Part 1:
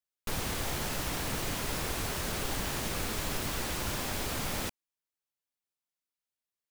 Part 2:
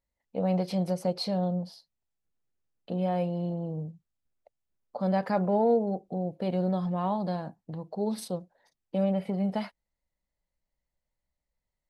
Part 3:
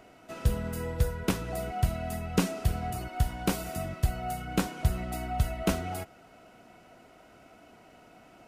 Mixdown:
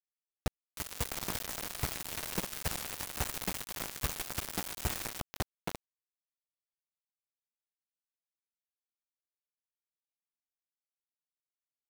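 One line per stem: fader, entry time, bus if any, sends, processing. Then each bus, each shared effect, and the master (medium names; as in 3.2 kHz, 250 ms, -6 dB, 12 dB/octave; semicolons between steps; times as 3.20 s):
0.0 dB, 0.50 s, bus A, no send, echo send -7 dB, hum notches 60/120/180/240/300/360/420/480/540 Hz
-16.5 dB, 0.00 s, bus A, no send, echo send -20 dB, none
-12.5 dB, 0.00 s, no bus, no send, echo send -6 dB, none
bus A: 0.0 dB, tilt EQ +3 dB/octave; peak limiter -21 dBFS, peak gain reduction 4.5 dB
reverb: none
echo: delay 344 ms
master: treble shelf 2.5 kHz -11 dB; bit crusher 5-bit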